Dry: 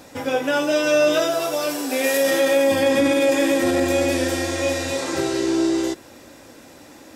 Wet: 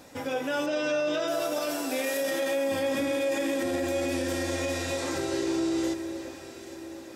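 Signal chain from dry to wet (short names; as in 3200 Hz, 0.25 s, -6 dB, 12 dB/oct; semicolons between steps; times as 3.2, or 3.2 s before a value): 0.66–1.28 LPF 5600 Hz 12 dB/oct; on a send: echo with dull and thin repeats by turns 0.412 s, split 1800 Hz, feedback 69%, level -10.5 dB; on the sum: limiter -14.5 dBFS, peak gain reduction 7 dB; gain -6 dB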